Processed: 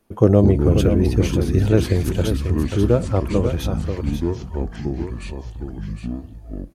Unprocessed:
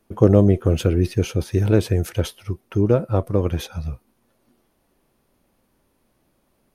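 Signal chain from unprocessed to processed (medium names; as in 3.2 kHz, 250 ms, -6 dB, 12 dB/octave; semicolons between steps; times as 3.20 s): on a send: delay 538 ms -7.5 dB; on the sum: ever faster or slower copies 122 ms, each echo -6 st, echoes 2, each echo -6 dB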